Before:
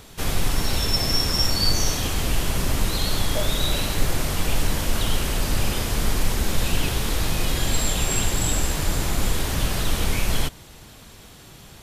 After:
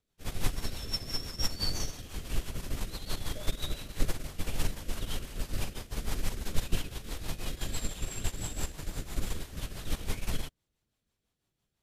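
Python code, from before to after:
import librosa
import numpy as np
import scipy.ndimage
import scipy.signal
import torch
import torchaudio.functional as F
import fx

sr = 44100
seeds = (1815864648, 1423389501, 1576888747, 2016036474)

y = fx.rotary(x, sr, hz=6.0)
y = fx.upward_expand(y, sr, threshold_db=-37.0, expansion=2.5)
y = F.gain(torch.from_numpy(y), -2.5).numpy()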